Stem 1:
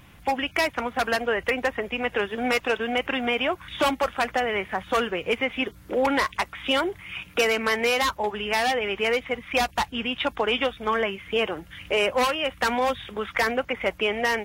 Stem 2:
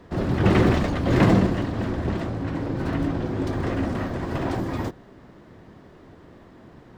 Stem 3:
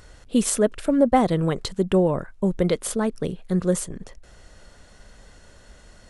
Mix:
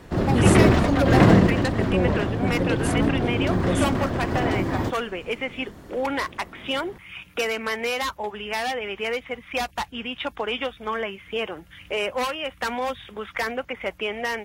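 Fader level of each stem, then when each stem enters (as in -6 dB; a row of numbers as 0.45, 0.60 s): -3.5, +2.5, -5.5 dB; 0.00, 0.00, 0.00 s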